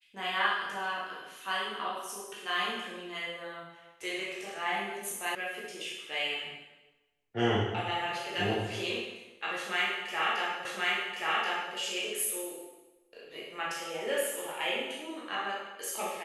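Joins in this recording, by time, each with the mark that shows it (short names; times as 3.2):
5.35 sound cut off
10.65 repeat of the last 1.08 s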